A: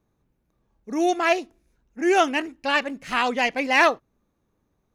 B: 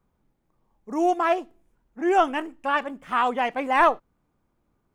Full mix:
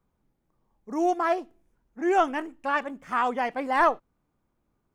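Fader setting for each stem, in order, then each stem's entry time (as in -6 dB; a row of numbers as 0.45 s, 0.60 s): -18.5 dB, -3.5 dB; 0.00 s, 0.00 s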